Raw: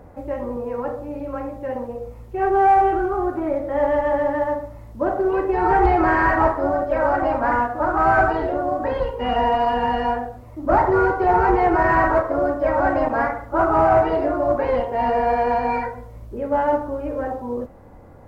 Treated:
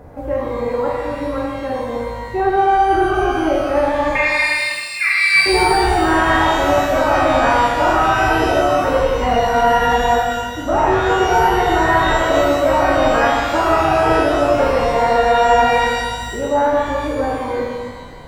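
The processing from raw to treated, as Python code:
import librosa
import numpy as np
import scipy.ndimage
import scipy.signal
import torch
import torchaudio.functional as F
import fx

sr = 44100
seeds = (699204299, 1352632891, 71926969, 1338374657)

p1 = fx.over_compress(x, sr, threshold_db=-20.0, ratio=-0.5)
p2 = x + F.gain(torch.from_numpy(p1), 2.0).numpy()
p3 = fx.freq_invert(p2, sr, carrier_hz=2700, at=(4.15, 5.46))
p4 = fx.rev_shimmer(p3, sr, seeds[0], rt60_s=1.4, semitones=12, shimmer_db=-8, drr_db=-1.0)
y = F.gain(torch.from_numpy(p4), -5.0).numpy()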